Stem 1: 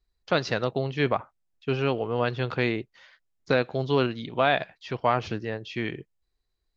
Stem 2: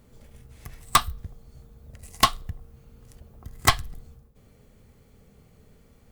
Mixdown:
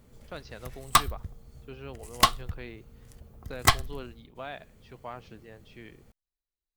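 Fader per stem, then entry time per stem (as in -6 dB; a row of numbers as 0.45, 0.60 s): -17.5, -1.5 dB; 0.00, 0.00 s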